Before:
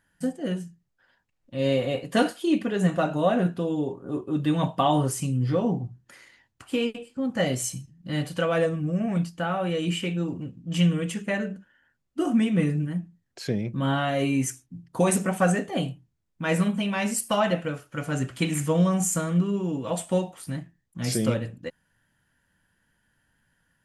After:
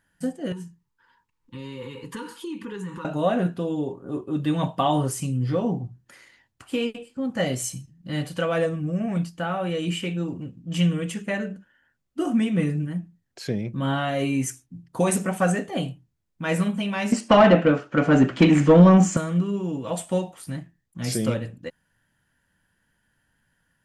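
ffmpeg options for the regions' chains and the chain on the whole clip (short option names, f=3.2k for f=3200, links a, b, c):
-filter_complex "[0:a]asettb=1/sr,asplit=3[a][b][c];[a]atrim=end=0.524[d];[b]atrim=start=0.52:end=3.05,asetpts=PTS-STARTPTS,afade=t=in:d=0.004:c=qsin,afade=t=out:st=2.526:d=0.004:c=qsin,equalizer=f=950:t=o:w=0.43:g=12.5,acompressor=threshold=-31dB:ratio=5:attack=3.2:release=140:knee=1:detection=peak,asuperstop=centerf=660:order=20:qfactor=2.1[e];[c]atrim=start=3.046[f];[d][e]acrossfade=d=0.004:c1=hsin:c2=qsin[g];[g][f]acrossfade=d=0.004:c1=qsin:c2=hsin,asettb=1/sr,asplit=3[h][i][j];[h]atrim=end=17.124[k];[i]atrim=start=17.12:end=19.17,asetpts=PTS-STARTPTS,afade=t=in:d=0.004:c=qsin,afade=t=out:st=2.046:d=0.004:c=qsin,lowpass=f=6.8k:w=0.5412,lowpass=f=6.8k:w=1.3066,equalizer=f=240:t=o:w=1.8:g=11,asplit=2[l][m];[m]highpass=f=720:p=1,volume=19dB,asoftclip=type=tanh:threshold=-3.5dB[n];[l][n]amix=inputs=2:normalize=0,lowpass=f=1.6k:p=1,volume=-6dB[o];[j]atrim=start=19.166[p];[k][o]acrossfade=d=0.004:c1=hsin:c2=qsin[q];[q][p]acrossfade=d=0.004:c1=qsin:c2=hsin"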